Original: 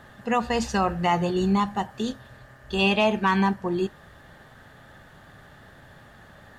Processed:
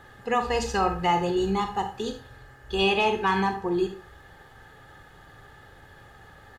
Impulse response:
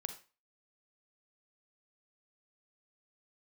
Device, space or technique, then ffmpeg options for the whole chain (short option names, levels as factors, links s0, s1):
microphone above a desk: -filter_complex "[0:a]aecho=1:1:2.4:0.55[s0];[1:a]atrim=start_sample=2205[s1];[s0][s1]afir=irnorm=-1:irlink=0"